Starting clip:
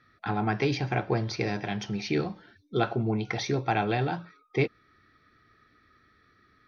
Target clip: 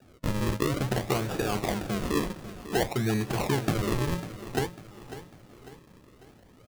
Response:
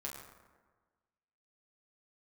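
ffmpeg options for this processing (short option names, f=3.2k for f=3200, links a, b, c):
-filter_complex "[0:a]alimiter=limit=-17dB:level=0:latency=1:release=306,acompressor=threshold=-35dB:ratio=2,asettb=1/sr,asplit=3[a][b][c];[a]atrim=end=1.144[d];[b]atrim=start=1.14:end=2.92,asetpts=PTS-STARTPTS,afade=t=in:d=0.004:c=qsin,afade=t=out:st=1.776:d=0.004:c=qsin,asplit=2[e][f];[f]highpass=f=720:p=1,volume=12dB,asoftclip=type=tanh:threshold=-22.5dB[g];[e][g]amix=inputs=2:normalize=0,lowpass=f=2.2k:p=1,volume=-6dB[h];[c]atrim=start=2.916[i];[d][h]acrossfade=d=0.004:c1=hsin:c2=qsin[j];[j][i]acrossfade=d=0.004:c1=qsin:c2=hsin,acrusher=samples=41:mix=1:aa=0.000001:lfo=1:lforange=41:lforate=0.55,aecho=1:1:548|1096|1644|2192:0.211|0.0951|0.0428|0.0193,volume=7dB"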